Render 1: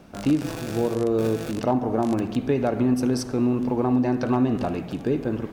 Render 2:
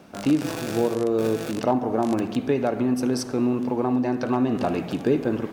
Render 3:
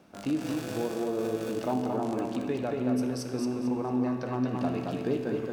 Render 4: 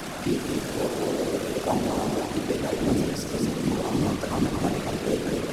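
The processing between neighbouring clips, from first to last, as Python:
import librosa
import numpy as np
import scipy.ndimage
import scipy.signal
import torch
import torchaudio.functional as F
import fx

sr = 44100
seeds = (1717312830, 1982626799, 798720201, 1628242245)

y1 = fx.highpass(x, sr, hz=190.0, slope=6)
y1 = fx.rider(y1, sr, range_db=10, speed_s=0.5)
y1 = F.gain(torch.from_numpy(y1), 1.5).numpy()
y2 = fx.comb_fb(y1, sr, f0_hz=63.0, decay_s=1.5, harmonics='all', damping=0.0, mix_pct=70)
y2 = fx.echo_feedback(y2, sr, ms=224, feedback_pct=31, wet_db=-3.5)
y3 = fx.delta_mod(y2, sr, bps=64000, step_db=-31.5)
y3 = fx.whisperise(y3, sr, seeds[0])
y3 = F.gain(torch.from_numpy(y3), 3.5).numpy()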